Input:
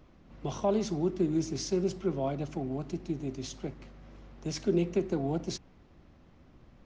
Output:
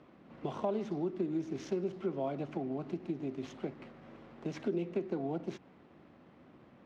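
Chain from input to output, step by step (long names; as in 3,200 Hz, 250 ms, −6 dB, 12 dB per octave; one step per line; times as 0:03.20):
running median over 9 samples
downward compressor 3 to 1, threshold −36 dBFS, peak gain reduction 10.5 dB
band-pass filter 190–4,200 Hz
level +3.5 dB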